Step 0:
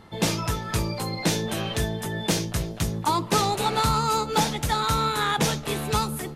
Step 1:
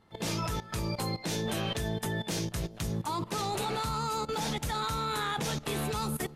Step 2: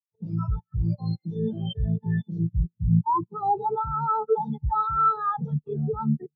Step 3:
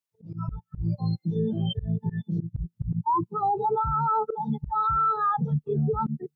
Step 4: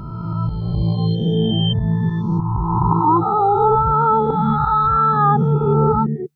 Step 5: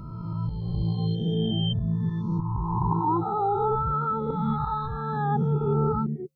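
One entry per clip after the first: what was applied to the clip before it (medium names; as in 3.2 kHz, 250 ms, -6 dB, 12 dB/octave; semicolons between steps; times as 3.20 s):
level held to a coarse grid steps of 16 dB
spectral contrast expander 4:1; trim +8 dB
slow attack 213 ms; peak limiter -23 dBFS, peak gain reduction 9 dB; trim +4.5 dB
reverse spectral sustain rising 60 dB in 2.10 s; trim +6.5 dB
feedback comb 530 Hz, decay 0.42 s, mix 60%; Shepard-style phaser falling 0.46 Hz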